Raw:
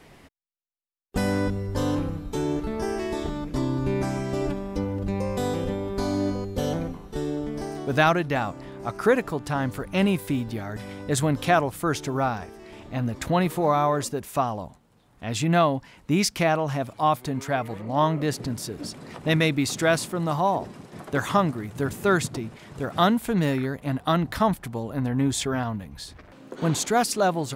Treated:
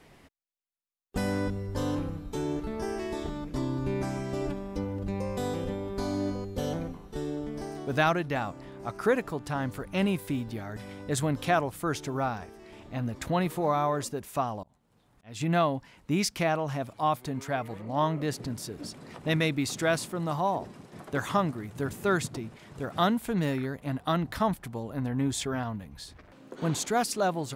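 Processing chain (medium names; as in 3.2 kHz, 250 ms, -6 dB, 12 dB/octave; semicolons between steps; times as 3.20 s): 14.63–15.41 s: slow attack 333 ms; trim -5 dB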